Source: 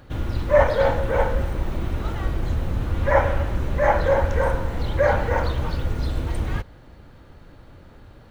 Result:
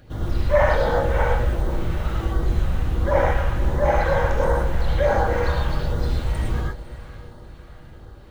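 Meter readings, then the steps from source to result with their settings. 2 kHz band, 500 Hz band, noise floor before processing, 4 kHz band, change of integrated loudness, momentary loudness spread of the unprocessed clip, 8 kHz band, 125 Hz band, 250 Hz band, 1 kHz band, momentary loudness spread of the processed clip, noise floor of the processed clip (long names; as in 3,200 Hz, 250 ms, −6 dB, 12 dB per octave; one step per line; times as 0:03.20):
0.0 dB, −0.5 dB, −47 dBFS, +1.5 dB, +0.5 dB, 9 LU, can't be measured, +1.5 dB, +0.5 dB, +0.5 dB, 9 LU, −42 dBFS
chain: feedback delay with all-pass diffusion 532 ms, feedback 47%, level −15 dB
auto-filter notch sine 1.4 Hz 280–2,700 Hz
reverb whose tail is shaped and stops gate 140 ms rising, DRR −2 dB
level −2 dB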